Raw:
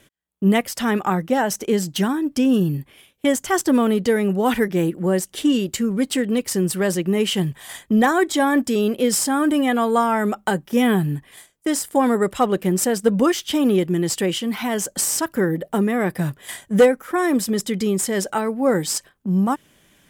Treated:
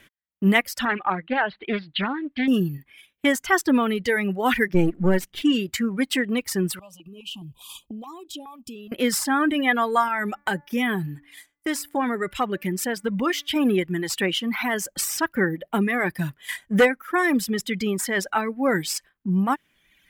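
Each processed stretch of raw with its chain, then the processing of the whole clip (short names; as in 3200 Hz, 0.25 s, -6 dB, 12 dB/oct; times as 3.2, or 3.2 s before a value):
0.85–2.48 steep low-pass 4300 Hz 96 dB/oct + low shelf 440 Hz -6.5 dB + Doppler distortion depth 0.26 ms
4.74–5.42 half-wave gain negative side -7 dB + low shelf 440 Hz +10 dB + decimation joined by straight lines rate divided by 2×
6.79–8.92 Chebyshev band-stop 1200–2500 Hz, order 5 + compressor 10:1, threshold -31 dBFS + stepped notch 4.8 Hz 360–1600 Hz
10.08–13.56 de-hum 288.6 Hz, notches 8 + compressor 1.5:1, threshold -24 dBFS
whole clip: reverb removal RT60 1.5 s; graphic EQ 125/500/2000/8000 Hz -4/-5/+7/-6 dB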